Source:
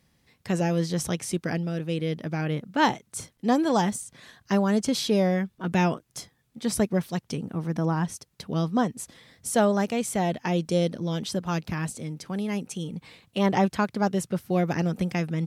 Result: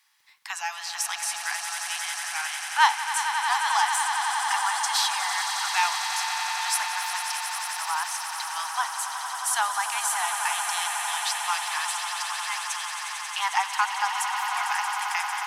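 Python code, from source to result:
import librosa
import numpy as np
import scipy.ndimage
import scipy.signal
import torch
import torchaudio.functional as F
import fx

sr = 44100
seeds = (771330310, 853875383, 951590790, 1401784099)

y = scipy.signal.sosfilt(scipy.signal.butter(12, 830.0, 'highpass', fs=sr, output='sos'), x)
y = fx.dmg_crackle(y, sr, seeds[0], per_s=34.0, level_db=-56.0)
y = fx.echo_swell(y, sr, ms=90, loudest=8, wet_db=-10.0)
y = F.gain(torch.from_numpy(y), 5.0).numpy()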